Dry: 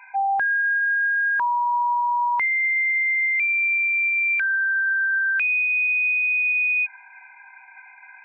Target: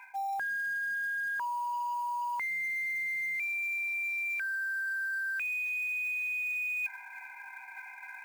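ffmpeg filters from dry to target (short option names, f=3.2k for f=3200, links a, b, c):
-af "acrusher=bits=5:mode=log:mix=0:aa=0.000001,areverse,acompressor=threshold=-33dB:ratio=8,areverse"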